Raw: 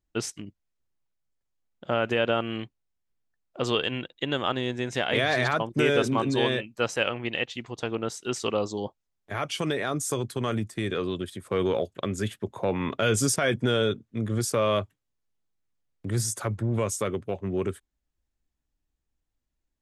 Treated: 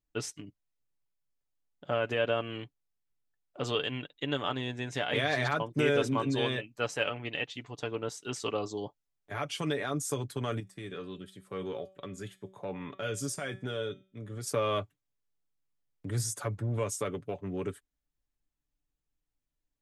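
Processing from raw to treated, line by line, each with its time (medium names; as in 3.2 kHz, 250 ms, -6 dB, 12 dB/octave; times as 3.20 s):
10.60–14.47 s: feedback comb 190 Hz, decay 0.39 s
whole clip: comb 6.9 ms, depth 47%; trim -6 dB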